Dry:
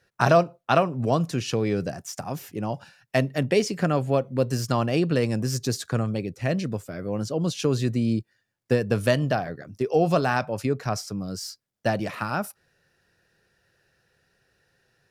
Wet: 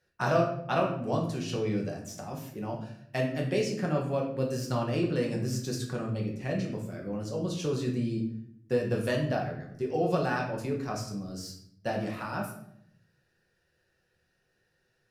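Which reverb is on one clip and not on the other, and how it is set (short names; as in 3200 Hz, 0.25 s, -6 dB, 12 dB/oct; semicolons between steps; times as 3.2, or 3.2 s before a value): shoebox room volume 140 m³, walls mixed, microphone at 1 m; gain -10 dB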